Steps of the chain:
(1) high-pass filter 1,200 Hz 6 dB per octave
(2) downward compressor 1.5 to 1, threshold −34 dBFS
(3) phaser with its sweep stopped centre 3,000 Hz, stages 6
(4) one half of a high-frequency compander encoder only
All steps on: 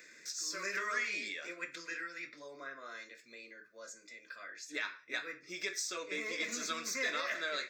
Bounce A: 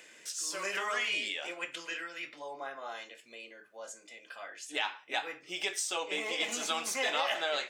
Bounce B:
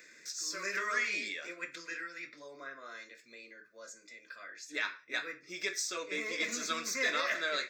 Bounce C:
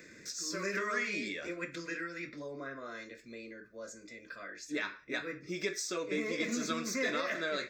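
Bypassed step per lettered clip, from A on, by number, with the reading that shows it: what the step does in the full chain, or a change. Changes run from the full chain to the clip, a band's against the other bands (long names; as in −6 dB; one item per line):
3, 250 Hz band −4.5 dB
2, change in momentary loudness spread +3 LU
1, 250 Hz band +11.0 dB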